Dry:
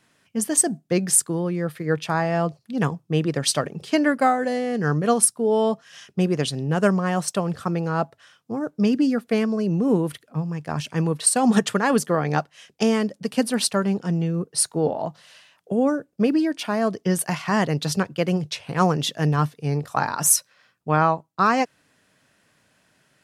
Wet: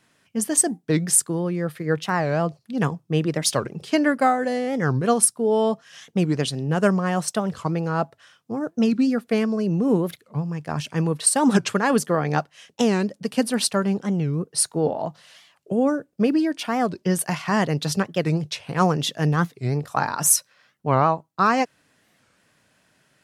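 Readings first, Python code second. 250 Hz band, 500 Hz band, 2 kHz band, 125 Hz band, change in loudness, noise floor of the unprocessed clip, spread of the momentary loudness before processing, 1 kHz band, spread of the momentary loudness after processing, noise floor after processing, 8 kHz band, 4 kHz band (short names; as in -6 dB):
0.0 dB, 0.0 dB, 0.0 dB, 0.0 dB, 0.0 dB, -66 dBFS, 9 LU, 0.0 dB, 9 LU, -65 dBFS, 0.0 dB, -0.5 dB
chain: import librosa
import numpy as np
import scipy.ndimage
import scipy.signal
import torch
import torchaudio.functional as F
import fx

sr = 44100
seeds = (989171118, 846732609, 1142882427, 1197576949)

y = fx.record_warp(x, sr, rpm=45.0, depth_cents=250.0)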